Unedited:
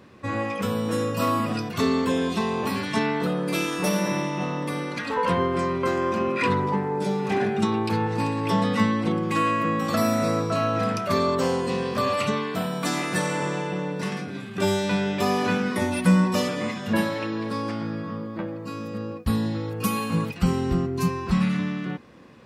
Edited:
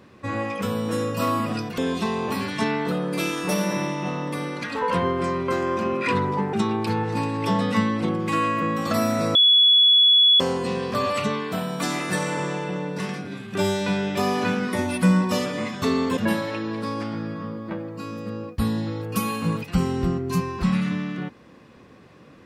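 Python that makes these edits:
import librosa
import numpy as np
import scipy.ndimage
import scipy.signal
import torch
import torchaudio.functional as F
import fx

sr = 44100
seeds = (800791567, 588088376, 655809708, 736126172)

y = fx.edit(x, sr, fx.move(start_s=1.78, length_s=0.35, to_s=16.85),
    fx.cut(start_s=6.88, length_s=0.68),
    fx.bleep(start_s=10.38, length_s=1.05, hz=3390.0, db=-12.0), tone=tone)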